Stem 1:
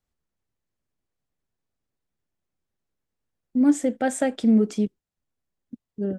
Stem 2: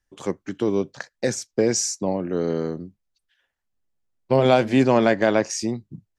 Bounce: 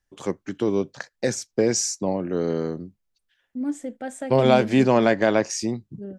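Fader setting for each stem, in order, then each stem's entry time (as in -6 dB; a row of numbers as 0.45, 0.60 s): -9.0, -0.5 dB; 0.00, 0.00 s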